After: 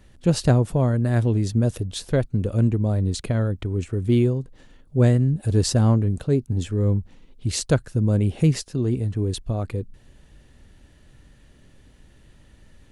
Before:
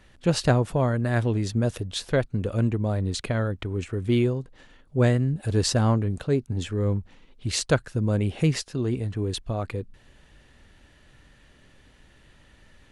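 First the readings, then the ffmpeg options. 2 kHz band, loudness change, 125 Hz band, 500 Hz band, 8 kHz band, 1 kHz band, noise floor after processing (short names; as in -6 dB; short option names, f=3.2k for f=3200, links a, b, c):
-4.0 dB, +3.5 dB, +4.5 dB, +1.0 dB, +1.5 dB, -2.0 dB, -53 dBFS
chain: -af "equalizer=f=1.8k:w=0.31:g=-9,volume=5dB"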